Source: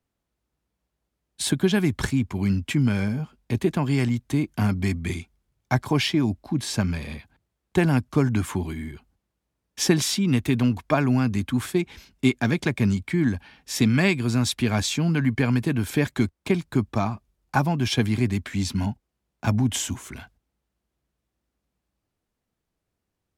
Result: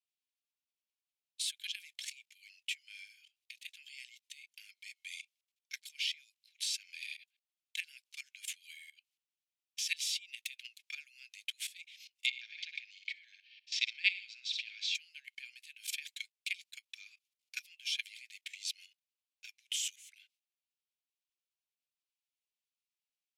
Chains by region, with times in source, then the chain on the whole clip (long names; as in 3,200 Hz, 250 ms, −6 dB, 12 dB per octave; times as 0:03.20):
0:12.26–0:14.95: low-pass filter 5,000 Hz 24 dB per octave + repeating echo 63 ms, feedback 43%, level −11 dB
whole clip: output level in coarse steps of 18 dB; Butterworth high-pass 2,400 Hz 48 dB per octave; spectral tilt −3 dB per octave; level +8 dB